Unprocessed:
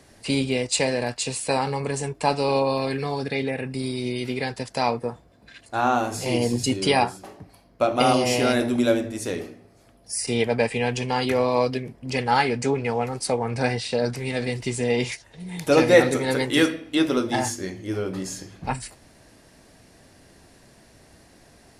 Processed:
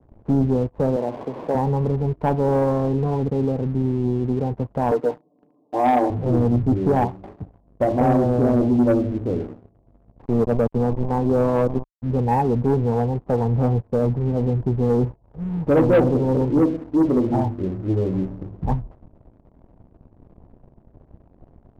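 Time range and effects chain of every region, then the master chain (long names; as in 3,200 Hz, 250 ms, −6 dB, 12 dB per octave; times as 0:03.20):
0:00.96–0:01.55: linear delta modulator 16 kbit/s, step −25.5 dBFS + high-pass filter 290 Hz + double-tracking delay 47 ms −14 dB
0:04.91–0:06.10: high-pass filter 250 Hz 24 dB per octave + low-shelf EQ 400 Hz +6 dB + comb filter 6.7 ms, depth 90%
0:10.19–0:12.02: high-pass filter 140 Hz + low-shelf EQ 230 Hz +3.5 dB + centre clipping without the shift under −25.5 dBFS
whole clip: Butterworth low-pass 1,100 Hz 96 dB per octave; spectral tilt −3.5 dB per octave; leveller curve on the samples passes 2; level −7.5 dB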